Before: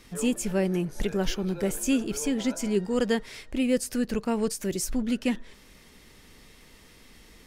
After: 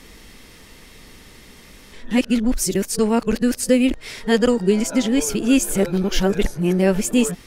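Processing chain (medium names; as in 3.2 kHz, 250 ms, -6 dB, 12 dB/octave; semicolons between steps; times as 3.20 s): reverse the whole clip; trim +8.5 dB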